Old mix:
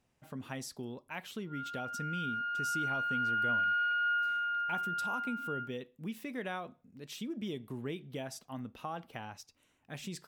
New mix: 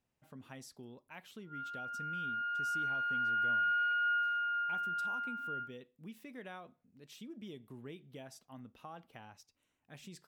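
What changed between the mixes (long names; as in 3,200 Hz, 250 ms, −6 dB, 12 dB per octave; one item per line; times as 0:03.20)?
speech −9.0 dB
background: add high-frequency loss of the air 150 metres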